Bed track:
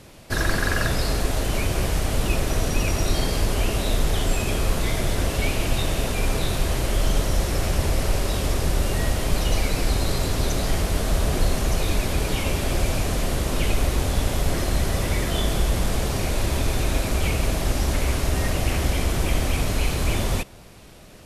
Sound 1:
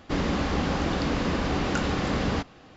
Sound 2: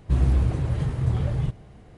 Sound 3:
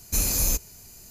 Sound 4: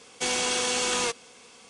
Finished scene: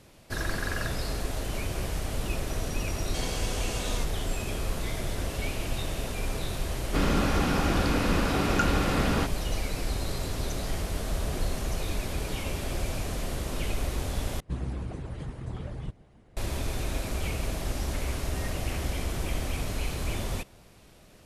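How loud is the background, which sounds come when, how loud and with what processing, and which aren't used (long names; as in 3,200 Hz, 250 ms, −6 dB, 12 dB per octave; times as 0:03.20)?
bed track −8.5 dB
0:02.93: mix in 4 −11.5 dB
0:06.84: mix in 1 −0.5 dB + hollow resonant body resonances 1,400/2,500 Hz, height 10 dB
0:14.40: overwrite with 2 −3.5 dB + harmonic and percussive parts rebalanced harmonic −13 dB
not used: 3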